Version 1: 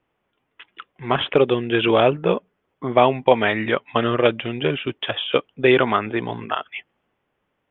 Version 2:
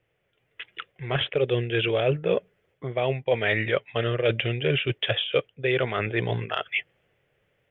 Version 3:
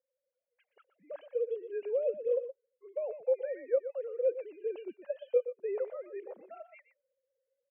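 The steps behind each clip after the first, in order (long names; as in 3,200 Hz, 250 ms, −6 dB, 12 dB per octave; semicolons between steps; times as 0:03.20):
reversed playback; downward compressor 6 to 1, threshold −25 dBFS, peak gain reduction 15.5 dB; reversed playback; graphic EQ with 10 bands 125 Hz +8 dB, 250 Hz −12 dB, 500 Hz +7 dB, 1,000 Hz −12 dB, 2,000 Hz +5 dB; automatic gain control gain up to 4 dB
three sine waves on the formant tracks; resonant band-pass 540 Hz, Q 3.3; single-tap delay 121 ms −12 dB; level −6.5 dB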